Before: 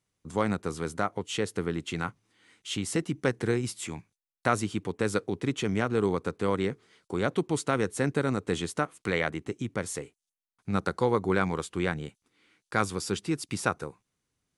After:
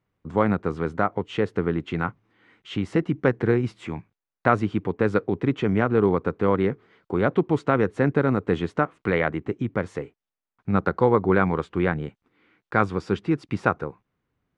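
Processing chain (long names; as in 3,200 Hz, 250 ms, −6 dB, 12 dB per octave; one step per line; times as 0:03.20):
low-pass filter 1,900 Hz 12 dB per octave
level +6.5 dB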